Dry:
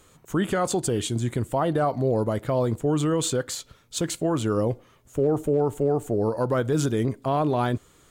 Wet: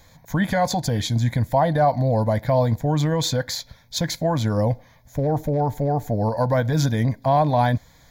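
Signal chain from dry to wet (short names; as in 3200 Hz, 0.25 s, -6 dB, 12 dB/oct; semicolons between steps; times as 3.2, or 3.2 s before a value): fixed phaser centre 1900 Hz, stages 8; gain +8 dB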